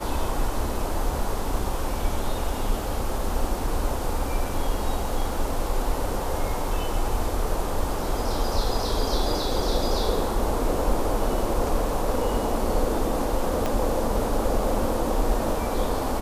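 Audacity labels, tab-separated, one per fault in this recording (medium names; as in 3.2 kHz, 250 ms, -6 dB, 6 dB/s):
13.660000	13.660000	pop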